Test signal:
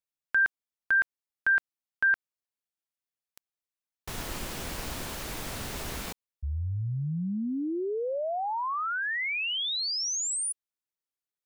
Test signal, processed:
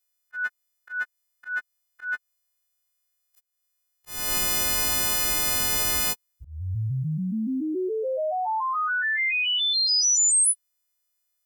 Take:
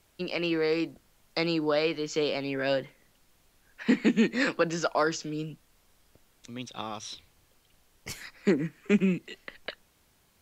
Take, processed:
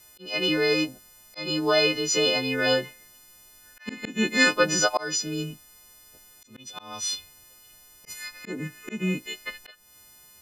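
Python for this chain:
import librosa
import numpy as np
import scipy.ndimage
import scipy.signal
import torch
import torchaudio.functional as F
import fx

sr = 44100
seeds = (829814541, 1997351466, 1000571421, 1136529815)

y = fx.freq_snap(x, sr, grid_st=3)
y = fx.auto_swell(y, sr, attack_ms=302.0)
y = F.gain(torch.from_numpy(y), 4.0).numpy()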